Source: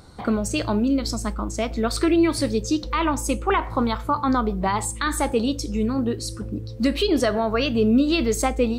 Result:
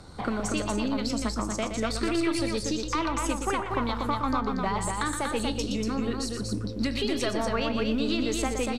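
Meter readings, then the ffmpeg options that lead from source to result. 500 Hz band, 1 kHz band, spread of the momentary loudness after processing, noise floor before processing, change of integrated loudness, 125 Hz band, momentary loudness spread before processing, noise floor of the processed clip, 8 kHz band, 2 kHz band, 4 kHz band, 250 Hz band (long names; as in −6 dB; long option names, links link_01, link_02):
−7.0 dB, −4.5 dB, 3 LU, −34 dBFS, −6.0 dB, −5.0 dB, 8 LU, −34 dBFS, −4.0 dB, −3.5 dB, −3.0 dB, −6.5 dB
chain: -filter_complex "[0:a]aeval=exprs='if(lt(val(0),0),0.708*val(0),val(0))':channel_layout=same,acrossover=split=170|1100[link_01][link_02][link_03];[link_01]acompressor=threshold=-38dB:ratio=4[link_04];[link_02]acompressor=threshold=-33dB:ratio=4[link_05];[link_03]acompressor=threshold=-35dB:ratio=4[link_06];[link_04][link_05][link_06]amix=inputs=3:normalize=0,lowpass=10000,asplit=2[link_07][link_08];[link_08]aecho=0:1:119.5|239.1:0.398|0.631[link_09];[link_07][link_09]amix=inputs=2:normalize=0,volume=2dB"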